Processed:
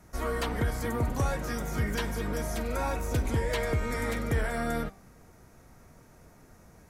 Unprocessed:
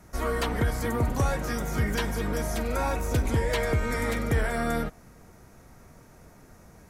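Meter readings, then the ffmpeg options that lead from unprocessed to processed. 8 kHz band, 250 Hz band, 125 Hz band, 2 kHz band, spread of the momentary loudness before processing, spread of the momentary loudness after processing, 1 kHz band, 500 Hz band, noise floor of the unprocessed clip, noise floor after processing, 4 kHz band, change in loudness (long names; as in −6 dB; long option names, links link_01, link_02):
−3.0 dB, −3.0 dB, −3.0 dB, −3.0 dB, 3 LU, 3 LU, −3.0 dB, −3.0 dB, −53 dBFS, −56 dBFS, −3.0 dB, −3.0 dB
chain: -af "bandreject=frequency=194.6:width_type=h:width=4,bandreject=frequency=389.2:width_type=h:width=4,bandreject=frequency=583.8:width_type=h:width=4,bandreject=frequency=778.4:width_type=h:width=4,bandreject=frequency=973:width_type=h:width=4,bandreject=frequency=1167.6:width_type=h:width=4,bandreject=frequency=1362.2:width_type=h:width=4,bandreject=frequency=1556.8:width_type=h:width=4,bandreject=frequency=1751.4:width_type=h:width=4,bandreject=frequency=1946:width_type=h:width=4,bandreject=frequency=2140.6:width_type=h:width=4,bandreject=frequency=2335.2:width_type=h:width=4,bandreject=frequency=2529.8:width_type=h:width=4,bandreject=frequency=2724.4:width_type=h:width=4,bandreject=frequency=2919:width_type=h:width=4,bandreject=frequency=3113.6:width_type=h:width=4,bandreject=frequency=3308.2:width_type=h:width=4,bandreject=frequency=3502.8:width_type=h:width=4,bandreject=frequency=3697.4:width_type=h:width=4,bandreject=frequency=3892:width_type=h:width=4,bandreject=frequency=4086.6:width_type=h:width=4,bandreject=frequency=4281.2:width_type=h:width=4,bandreject=frequency=4475.8:width_type=h:width=4,bandreject=frequency=4670.4:width_type=h:width=4,bandreject=frequency=4865:width_type=h:width=4,bandreject=frequency=5059.6:width_type=h:width=4,bandreject=frequency=5254.2:width_type=h:width=4,bandreject=frequency=5448.8:width_type=h:width=4,volume=-3dB"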